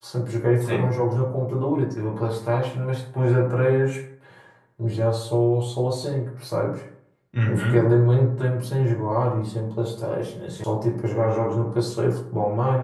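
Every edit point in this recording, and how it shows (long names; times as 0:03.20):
0:10.64: cut off before it has died away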